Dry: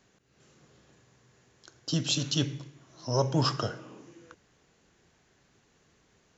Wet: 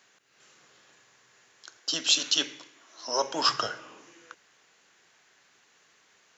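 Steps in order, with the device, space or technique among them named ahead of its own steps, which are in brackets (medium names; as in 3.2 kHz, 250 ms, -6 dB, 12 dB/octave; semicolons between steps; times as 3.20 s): filter by subtraction (in parallel: low-pass 1.7 kHz 12 dB/octave + polarity flip); 1.77–3.49 s: on the sum: high-pass 220 Hz 24 dB/octave; trim +5.5 dB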